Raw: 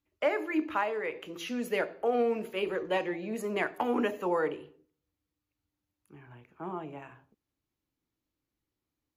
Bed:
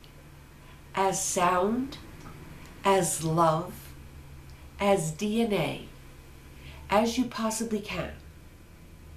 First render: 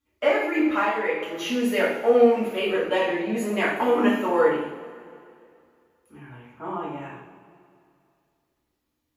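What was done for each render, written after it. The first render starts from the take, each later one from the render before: two-slope reverb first 0.63 s, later 2.5 s, from -15 dB, DRR -8 dB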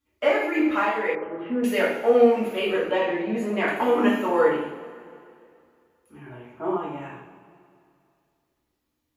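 1.15–1.64 LPF 1600 Hz 24 dB/oct; 2.91–3.68 LPF 2700 Hz 6 dB/oct; 6.26–6.77 small resonant body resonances 380/620 Hz, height 12 dB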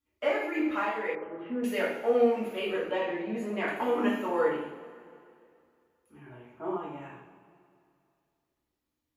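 gain -7 dB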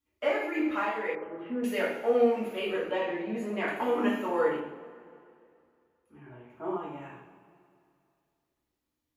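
4.6–6.5 high shelf 3900 Hz -10 dB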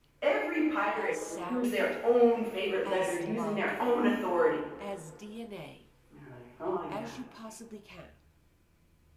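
add bed -16 dB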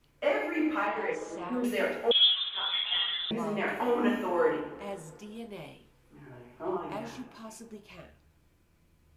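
0.87–1.53 air absorption 91 m; 2.11–3.31 inverted band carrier 3800 Hz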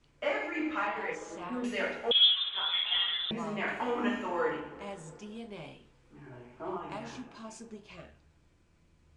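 steep low-pass 8800 Hz 36 dB/oct; dynamic EQ 400 Hz, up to -6 dB, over -42 dBFS, Q 0.71

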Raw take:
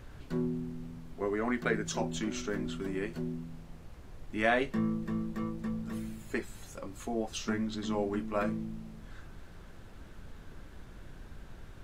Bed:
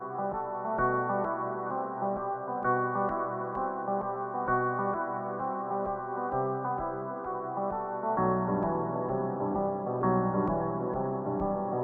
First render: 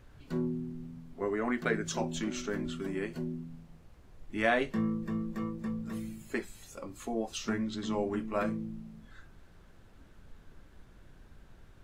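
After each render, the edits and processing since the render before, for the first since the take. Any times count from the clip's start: noise print and reduce 7 dB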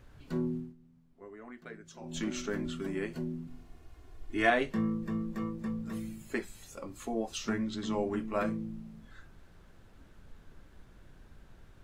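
0.56–2.2 dip -16.5 dB, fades 0.19 s; 3.47–4.5 comb 2.8 ms, depth 80%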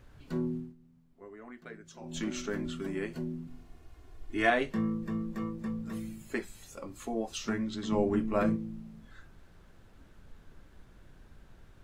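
7.92–8.56 low shelf 490 Hz +7 dB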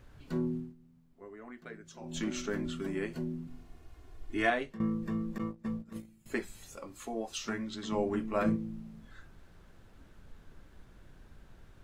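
4.34–4.8 fade out, to -15.5 dB; 5.38–6.26 gate -37 dBFS, range -17 dB; 6.77–8.46 low shelf 390 Hz -6.5 dB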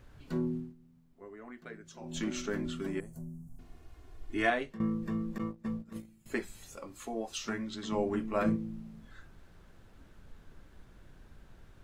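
3–3.59 EQ curve 140 Hz 0 dB, 340 Hz -19 dB, 670 Hz -8 dB, 2600 Hz -28 dB, 4500 Hz -19 dB, 6500 Hz -2 dB, 9400 Hz +5 dB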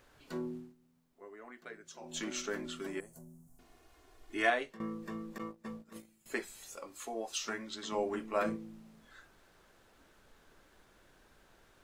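tone controls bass -15 dB, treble +3 dB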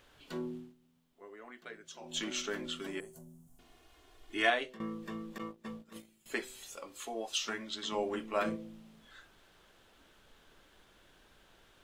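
bell 3200 Hz +7.5 dB 0.61 oct; de-hum 127.6 Hz, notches 5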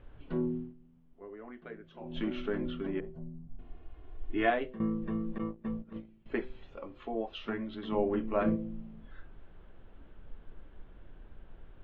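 LPF 3200 Hz 24 dB/oct; tilt -4 dB/oct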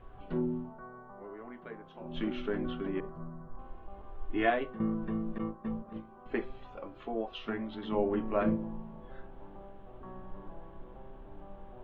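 add bed -21.5 dB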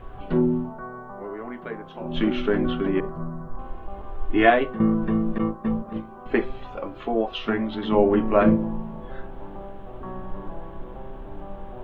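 gain +11.5 dB

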